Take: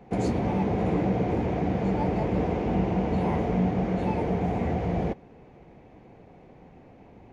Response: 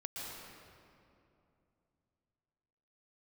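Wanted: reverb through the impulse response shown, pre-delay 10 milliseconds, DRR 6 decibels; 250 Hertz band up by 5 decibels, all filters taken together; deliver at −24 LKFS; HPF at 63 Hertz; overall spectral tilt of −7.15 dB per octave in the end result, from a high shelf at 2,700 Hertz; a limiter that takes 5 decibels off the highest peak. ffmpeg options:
-filter_complex "[0:a]highpass=63,equalizer=frequency=250:width_type=o:gain=7,highshelf=frequency=2700:gain=7.5,alimiter=limit=-15.5dB:level=0:latency=1,asplit=2[link_01][link_02];[1:a]atrim=start_sample=2205,adelay=10[link_03];[link_02][link_03]afir=irnorm=-1:irlink=0,volume=-6.5dB[link_04];[link_01][link_04]amix=inputs=2:normalize=0,volume=-0.5dB"

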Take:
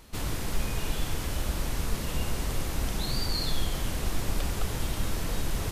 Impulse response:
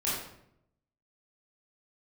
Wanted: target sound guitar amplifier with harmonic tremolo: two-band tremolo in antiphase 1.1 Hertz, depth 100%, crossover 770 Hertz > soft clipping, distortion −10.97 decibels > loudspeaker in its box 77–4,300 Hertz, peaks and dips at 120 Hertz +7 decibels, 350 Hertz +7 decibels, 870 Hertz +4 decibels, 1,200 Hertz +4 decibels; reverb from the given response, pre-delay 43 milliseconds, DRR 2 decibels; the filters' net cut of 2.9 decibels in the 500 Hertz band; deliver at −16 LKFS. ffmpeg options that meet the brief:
-filter_complex "[0:a]equalizer=frequency=500:width_type=o:gain=-8,asplit=2[link_01][link_02];[1:a]atrim=start_sample=2205,adelay=43[link_03];[link_02][link_03]afir=irnorm=-1:irlink=0,volume=-9.5dB[link_04];[link_01][link_04]amix=inputs=2:normalize=0,acrossover=split=770[link_05][link_06];[link_05]aeval=exprs='val(0)*(1-1/2+1/2*cos(2*PI*1.1*n/s))':channel_layout=same[link_07];[link_06]aeval=exprs='val(0)*(1-1/2-1/2*cos(2*PI*1.1*n/s))':channel_layout=same[link_08];[link_07][link_08]amix=inputs=2:normalize=0,asoftclip=threshold=-25dB,highpass=77,equalizer=frequency=120:width_type=q:width=4:gain=7,equalizer=frequency=350:width_type=q:width=4:gain=7,equalizer=frequency=870:width_type=q:width=4:gain=4,equalizer=frequency=1200:width_type=q:width=4:gain=4,lowpass=frequency=4300:width=0.5412,lowpass=frequency=4300:width=1.3066,volume=22dB"

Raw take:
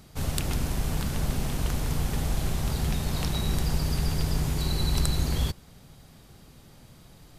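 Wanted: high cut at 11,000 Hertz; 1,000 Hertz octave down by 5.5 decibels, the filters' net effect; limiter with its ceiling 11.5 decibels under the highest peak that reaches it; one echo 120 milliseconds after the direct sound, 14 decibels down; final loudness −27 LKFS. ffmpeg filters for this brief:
ffmpeg -i in.wav -af "lowpass=11000,equalizer=frequency=1000:width_type=o:gain=-7.5,alimiter=limit=-19.5dB:level=0:latency=1,aecho=1:1:120:0.2,volume=4dB" out.wav

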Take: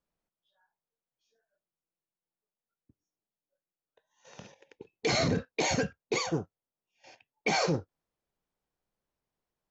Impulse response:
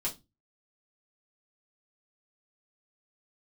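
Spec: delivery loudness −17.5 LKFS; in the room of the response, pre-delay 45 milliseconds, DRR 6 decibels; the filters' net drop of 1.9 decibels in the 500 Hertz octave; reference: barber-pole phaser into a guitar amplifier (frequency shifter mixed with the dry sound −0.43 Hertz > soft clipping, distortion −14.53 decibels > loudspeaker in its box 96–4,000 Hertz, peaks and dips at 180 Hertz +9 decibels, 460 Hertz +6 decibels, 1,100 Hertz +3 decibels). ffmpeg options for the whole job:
-filter_complex "[0:a]equalizer=frequency=500:width_type=o:gain=-7,asplit=2[link_01][link_02];[1:a]atrim=start_sample=2205,adelay=45[link_03];[link_02][link_03]afir=irnorm=-1:irlink=0,volume=-9dB[link_04];[link_01][link_04]amix=inputs=2:normalize=0,asplit=2[link_05][link_06];[link_06]afreqshift=-0.43[link_07];[link_05][link_07]amix=inputs=2:normalize=1,asoftclip=threshold=-28dB,highpass=96,equalizer=frequency=180:width_type=q:width=4:gain=9,equalizer=frequency=460:width_type=q:width=4:gain=6,equalizer=frequency=1100:width_type=q:width=4:gain=3,lowpass=frequency=4000:width=0.5412,lowpass=frequency=4000:width=1.3066,volume=17dB"

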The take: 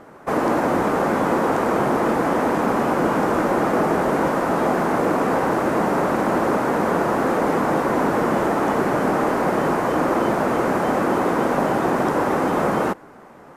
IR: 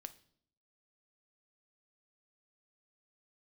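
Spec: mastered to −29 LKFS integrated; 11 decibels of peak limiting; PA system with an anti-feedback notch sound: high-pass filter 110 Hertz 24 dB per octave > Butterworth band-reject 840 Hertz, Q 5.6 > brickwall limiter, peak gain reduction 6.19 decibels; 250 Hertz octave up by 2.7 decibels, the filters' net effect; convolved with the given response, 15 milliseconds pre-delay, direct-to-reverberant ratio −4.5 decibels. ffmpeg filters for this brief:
-filter_complex "[0:a]equalizer=frequency=250:width_type=o:gain=3.5,alimiter=limit=-15.5dB:level=0:latency=1,asplit=2[link_01][link_02];[1:a]atrim=start_sample=2205,adelay=15[link_03];[link_02][link_03]afir=irnorm=-1:irlink=0,volume=10dB[link_04];[link_01][link_04]amix=inputs=2:normalize=0,highpass=frequency=110:width=0.5412,highpass=frequency=110:width=1.3066,asuperstop=centerf=840:order=8:qfactor=5.6,volume=-7.5dB,alimiter=limit=-20dB:level=0:latency=1"

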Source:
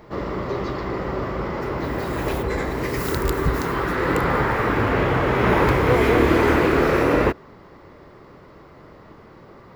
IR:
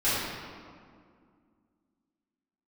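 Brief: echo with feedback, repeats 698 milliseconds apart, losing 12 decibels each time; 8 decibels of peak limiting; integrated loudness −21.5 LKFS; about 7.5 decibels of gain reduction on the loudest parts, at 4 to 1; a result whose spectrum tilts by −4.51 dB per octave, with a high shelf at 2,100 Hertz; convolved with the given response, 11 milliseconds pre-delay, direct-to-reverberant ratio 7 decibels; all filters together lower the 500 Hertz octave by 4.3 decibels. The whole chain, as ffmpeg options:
-filter_complex "[0:a]equalizer=frequency=500:width_type=o:gain=-6,highshelf=frequency=2100:gain=8,acompressor=threshold=-23dB:ratio=4,alimiter=limit=-17.5dB:level=0:latency=1,aecho=1:1:698|1396|2094:0.251|0.0628|0.0157,asplit=2[link_01][link_02];[1:a]atrim=start_sample=2205,adelay=11[link_03];[link_02][link_03]afir=irnorm=-1:irlink=0,volume=-20.5dB[link_04];[link_01][link_04]amix=inputs=2:normalize=0,volume=5dB"

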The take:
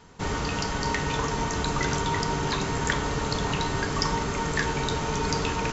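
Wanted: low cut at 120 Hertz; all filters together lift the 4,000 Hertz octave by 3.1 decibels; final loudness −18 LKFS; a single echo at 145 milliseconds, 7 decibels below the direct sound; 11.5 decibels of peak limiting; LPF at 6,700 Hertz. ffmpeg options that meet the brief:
ffmpeg -i in.wav -af "highpass=120,lowpass=6700,equalizer=frequency=4000:width_type=o:gain=4.5,alimiter=limit=-19.5dB:level=0:latency=1,aecho=1:1:145:0.447,volume=10.5dB" out.wav

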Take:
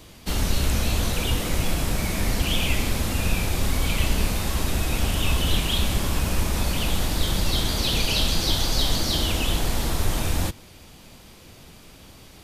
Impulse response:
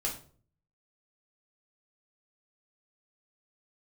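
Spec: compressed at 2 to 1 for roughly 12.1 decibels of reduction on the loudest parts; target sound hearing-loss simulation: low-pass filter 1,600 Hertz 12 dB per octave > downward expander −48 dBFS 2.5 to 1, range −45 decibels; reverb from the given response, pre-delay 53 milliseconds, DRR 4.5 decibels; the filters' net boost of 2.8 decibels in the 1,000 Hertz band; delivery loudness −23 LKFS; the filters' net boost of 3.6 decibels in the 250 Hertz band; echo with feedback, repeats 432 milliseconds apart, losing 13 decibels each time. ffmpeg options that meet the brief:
-filter_complex "[0:a]equalizer=frequency=250:width_type=o:gain=4.5,equalizer=frequency=1000:width_type=o:gain=4,acompressor=threshold=-39dB:ratio=2,aecho=1:1:432|864|1296:0.224|0.0493|0.0108,asplit=2[link_01][link_02];[1:a]atrim=start_sample=2205,adelay=53[link_03];[link_02][link_03]afir=irnorm=-1:irlink=0,volume=-8.5dB[link_04];[link_01][link_04]amix=inputs=2:normalize=0,lowpass=1600,agate=range=-45dB:threshold=-48dB:ratio=2.5,volume=12dB"

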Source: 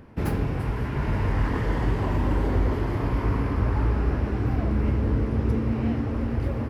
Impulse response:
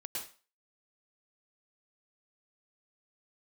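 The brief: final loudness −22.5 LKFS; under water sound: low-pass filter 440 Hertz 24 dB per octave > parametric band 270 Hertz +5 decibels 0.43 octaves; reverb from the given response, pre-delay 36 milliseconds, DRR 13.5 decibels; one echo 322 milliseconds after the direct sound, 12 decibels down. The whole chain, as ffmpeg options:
-filter_complex "[0:a]aecho=1:1:322:0.251,asplit=2[link_01][link_02];[1:a]atrim=start_sample=2205,adelay=36[link_03];[link_02][link_03]afir=irnorm=-1:irlink=0,volume=-13.5dB[link_04];[link_01][link_04]amix=inputs=2:normalize=0,lowpass=frequency=440:width=0.5412,lowpass=frequency=440:width=1.3066,equalizer=frequency=270:width_type=o:width=0.43:gain=5,volume=2.5dB"

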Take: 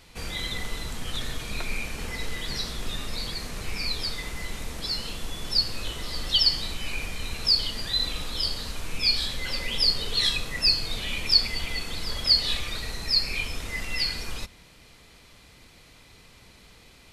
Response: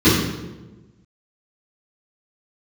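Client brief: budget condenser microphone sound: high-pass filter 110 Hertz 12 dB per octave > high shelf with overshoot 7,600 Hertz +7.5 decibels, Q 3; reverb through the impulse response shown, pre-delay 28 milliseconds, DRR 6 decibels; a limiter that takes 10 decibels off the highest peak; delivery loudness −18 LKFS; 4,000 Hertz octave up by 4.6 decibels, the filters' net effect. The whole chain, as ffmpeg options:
-filter_complex "[0:a]equalizer=frequency=4000:width_type=o:gain=8.5,alimiter=limit=-9.5dB:level=0:latency=1,asplit=2[link_01][link_02];[1:a]atrim=start_sample=2205,adelay=28[link_03];[link_02][link_03]afir=irnorm=-1:irlink=0,volume=-30.5dB[link_04];[link_01][link_04]amix=inputs=2:normalize=0,highpass=110,highshelf=frequency=7600:width_type=q:width=3:gain=7.5,volume=5.5dB"

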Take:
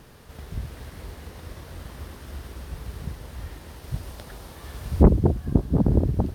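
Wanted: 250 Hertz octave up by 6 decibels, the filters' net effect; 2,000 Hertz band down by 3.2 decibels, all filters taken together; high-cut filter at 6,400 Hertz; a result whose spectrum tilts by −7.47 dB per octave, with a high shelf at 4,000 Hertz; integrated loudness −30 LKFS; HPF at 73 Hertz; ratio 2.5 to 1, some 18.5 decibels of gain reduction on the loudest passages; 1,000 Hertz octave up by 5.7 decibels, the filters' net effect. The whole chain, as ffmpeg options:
ffmpeg -i in.wav -af "highpass=73,lowpass=6400,equalizer=frequency=250:width_type=o:gain=7.5,equalizer=frequency=1000:width_type=o:gain=8.5,equalizer=frequency=2000:width_type=o:gain=-6.5,highshelf=frequency=4000:gain=-5.5,acompressor=threshold=-37dB:ratio=2.5,volume=9dB" out.wav

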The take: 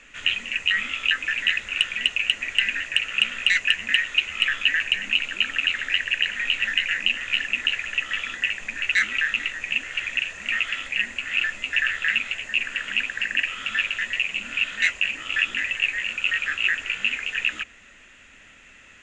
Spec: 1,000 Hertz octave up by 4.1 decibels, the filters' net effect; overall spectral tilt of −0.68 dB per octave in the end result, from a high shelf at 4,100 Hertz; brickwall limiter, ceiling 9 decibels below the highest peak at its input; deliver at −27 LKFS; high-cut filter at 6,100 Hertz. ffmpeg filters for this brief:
ffmpeg -i in.wav -af "lowpass=6100,equalizer=frequency=1000:width_type=o:gain=7,highshelf=frequency=4100:gain=-4.5,volume=-1.5dB,alimiter=limit=-15.5dB:level=0:latency=1" out.wav

